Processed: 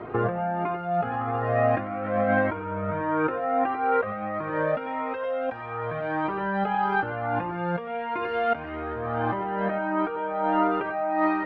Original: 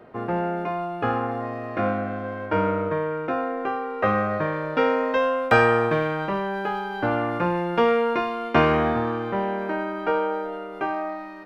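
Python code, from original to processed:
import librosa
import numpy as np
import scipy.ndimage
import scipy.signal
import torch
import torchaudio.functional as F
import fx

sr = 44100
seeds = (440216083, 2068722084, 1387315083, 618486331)

p1 = x + 10.0 ** (-5.5 / 20.0) * np.pad(x, (int(93 * sr / 1000.0), 0))[:len(x)]
p2 = 10.0 ** (-17.0 / 20.0) * np.tanh(p1 / 10.0 ** (-17.0 / 20.0))
p3 = p1 + F.gain(torch.from_numpy(p2), -7.0).numpy()
p4 = scipy.signal.sosfilt(scipy.signal.butter(2, 2500.0, 'lowpass', fs=sr, output='sos'), p3)
p5 = fx.over_compress(p4, sr, threshold_db=-29.0, ratio=-1.0)
p6 = scipy.signal.sosfilt(scipy.signal.butter(2, 43.0, 'highpass', fs=sr, output='sos'), p5)
p7 = fx.comb_cascade(p6, sr, direction='rising', hz=1.6)
y = F.gain(torch.from_numpy(p7), 6.0).numpy()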